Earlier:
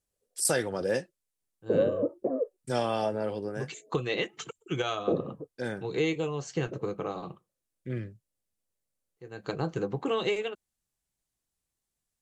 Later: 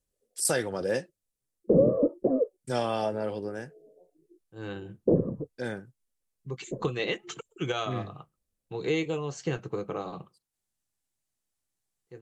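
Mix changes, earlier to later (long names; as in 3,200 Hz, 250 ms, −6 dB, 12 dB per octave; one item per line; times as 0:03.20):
second voice: entry +2.90 s
background: add spectral tilt −3.5 dB per octave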